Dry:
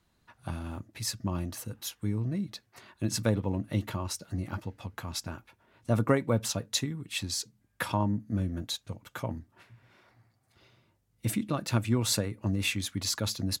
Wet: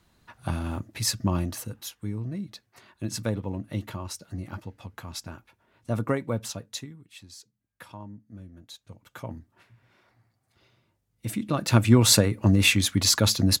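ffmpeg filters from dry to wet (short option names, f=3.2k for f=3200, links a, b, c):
-af "volume=31dB,afade=t=out:st=1.3:d=0.61:silence=0.375837,afade=t=out:st=6.28:d=0.85:silence=0.237137,afade=t=in:st=8.62:d=0.7:silence=0.251189,afade=t=in:st=11.31:d=0.61:silence=0.251189"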